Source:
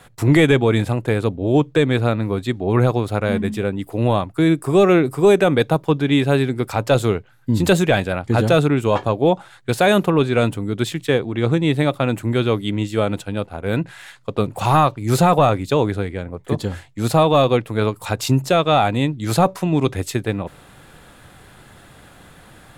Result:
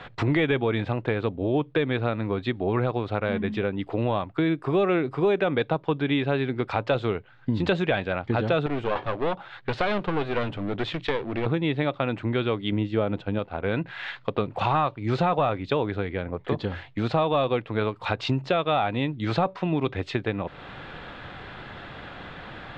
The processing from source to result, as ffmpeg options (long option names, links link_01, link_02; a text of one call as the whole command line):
ffmpeg -i in.wav -filter_complex "[0:a]asettb=1/sr,asplit=3[link_01][link_02][link_03];[link_01]atrim=end=8.664[link_04];[link_02]atrim=start=8.66:end=11.46,asetpts=PTS-STARTPTS,afade=type=in:duration=0.004:curve=qsin,afade=type=out:start_time=2.796:duration=0.004:curve=qsin,aeval=exprs='clip(val(0),-1,0.0355)':channel_layout=same[link_05];[link_03]atrim=start=11.456[link_06];[link_04][link_05]acrossfade=duration=0.004:curve1=hsin:curve2=qsin[link_07];[link_07][link_06]acrossfade=duration=0.004:curve1=qsin:curve2=hsin,asettb=1/sr,asplit=3[link_08][link_09][link_10];[link_08]atrim=end=12.724[link_11];[link_09]atrim=start=12.72:end=13.39,asetpts=PTS-STARTPTS,afade=type=in:duration=0.004:curve=qsin,afade=type=out:start_time=0.666:duration=0.004:curve=qsin,tiltshelf=frequency=970:gain=4.5[link_12];[link_10]atrim=start=13.386[link_13];[link_11][link_12]acrossfade=duration=0.004:curve1=hsin:curve2=qsin[link_14];[link_14][link_13]acrossfade=duration=0.004:curve1=qsin:curve2=hsin,lowpass=frequency=3700:width=0.5412,lowpass=frequency=3700:width=1.3066,lowshelf=frequency=320:gain=-5.5,acompressor=threshold=-35dB:ratio=2.5,volume=7.5dB" out.wav